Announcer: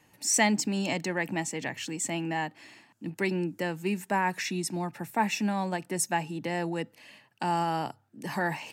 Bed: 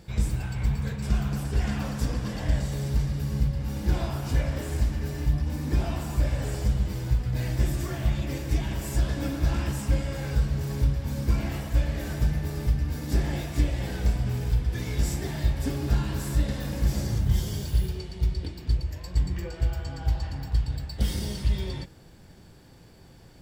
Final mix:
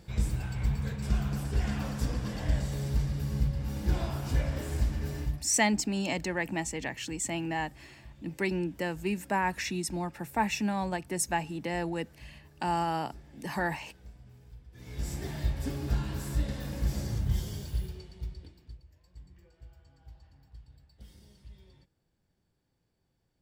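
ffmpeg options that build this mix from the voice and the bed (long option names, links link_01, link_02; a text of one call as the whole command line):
ffmpeg -i stem1.wav -i stem2.wav -filter_complex "[0:a]adelay=5200,volume=-1.5dB[link_01];[1:a]volume=17dB,afade=type=out:start_time=5.17:duration=0.28:silence=0.0749894,afade=type=in:start_time=14.72:duration=0.52:silence=0.0944061,afade=type=out:start_time=17.29:duration=1.5:silence=0.0944061[link_02];[link_01][link_02]amix=inputs=2:normalize=0" out.wav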